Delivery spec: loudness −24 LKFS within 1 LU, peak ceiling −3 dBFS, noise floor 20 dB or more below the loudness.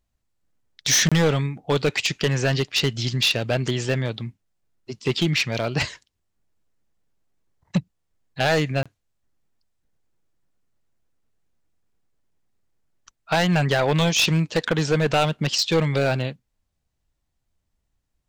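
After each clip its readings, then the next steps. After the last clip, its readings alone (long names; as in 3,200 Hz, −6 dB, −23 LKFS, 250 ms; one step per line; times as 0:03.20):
share of clipped samples 1.3%; peaks flattened at −14.0 dBFS; number of dropouts 2; longest dropout 26 ms; integrated loudness −22.0 LKFS; sample peak −14.0 dBFS; target loudness −24.0 LKFS
→ clipped peaks rebuilt −14 dBFS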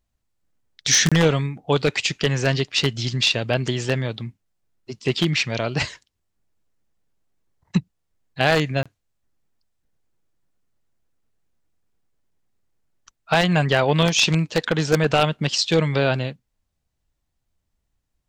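share of clipped samples 0.0%; number of dropouts 2; longest dropout 26 ms
→ repair the gap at 0:01.09/0:08.83, 26 ms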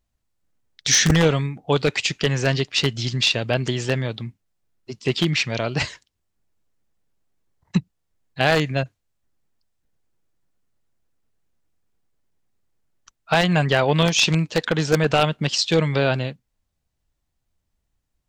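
number of dropouts 0; integrated loudness −20.5 LKFS; sample peak −4.5 dBFS; target loudness −24.0 LKFS
→ level −3.5 dB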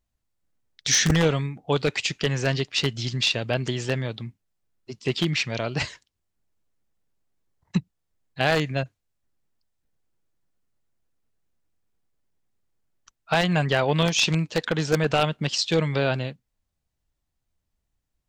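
integrated loudness −24.0 LKFS; sample peak −8.0 dBFS; background noise floor −80 dBFS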